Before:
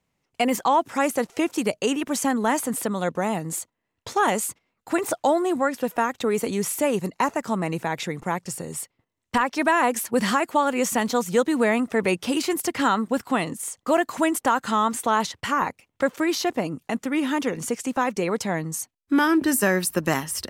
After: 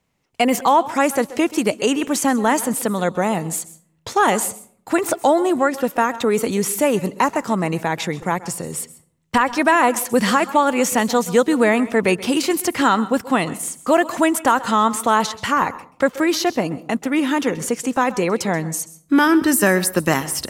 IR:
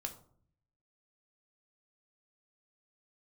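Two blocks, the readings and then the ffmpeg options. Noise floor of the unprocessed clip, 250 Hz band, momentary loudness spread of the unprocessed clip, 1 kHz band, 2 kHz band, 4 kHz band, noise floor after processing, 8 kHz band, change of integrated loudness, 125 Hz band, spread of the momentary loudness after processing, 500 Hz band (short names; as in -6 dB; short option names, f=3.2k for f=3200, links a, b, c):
-79 dBFS, +5.0 dB, 8 LU, +5.0 dB, +5.0 dB, +5.0 dB, -60 dBFS, +5.0 dB, +5.0 dB, +5.0 dB, 8 LU, +5.0 dB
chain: -filter_complex "[0:a]asplit=2[a][b];[1:a]atrim=start_sample=2205,adelay=130[c];[b][c]afir=irnorm=-1:irlink=0,volume=-15dB[d];[a][d]amix=inputs=2:normalize=0,volume=5dB"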